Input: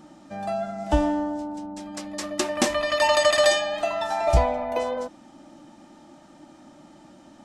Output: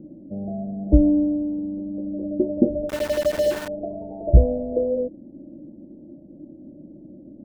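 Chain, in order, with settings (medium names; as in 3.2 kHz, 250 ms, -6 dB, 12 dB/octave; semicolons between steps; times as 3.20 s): steep low-pass 530 Hz 48 dB/octave; 2.89–3.68 s: small samples zeroed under -34.5 dBFS; trim +8 dB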